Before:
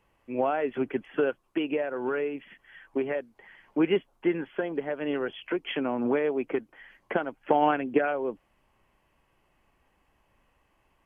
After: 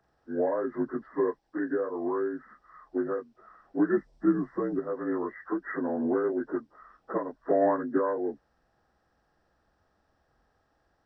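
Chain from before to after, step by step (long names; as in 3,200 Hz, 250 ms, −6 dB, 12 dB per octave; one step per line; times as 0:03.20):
partials spread apart or drawn together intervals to 80%
0:03.97–0:04.79: bass and treble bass +11 dB, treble +7 dB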